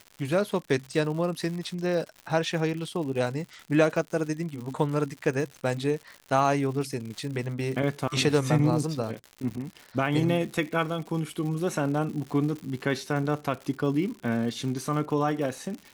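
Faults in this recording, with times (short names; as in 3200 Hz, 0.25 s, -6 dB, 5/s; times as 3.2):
crackle 140/s -35 dBFS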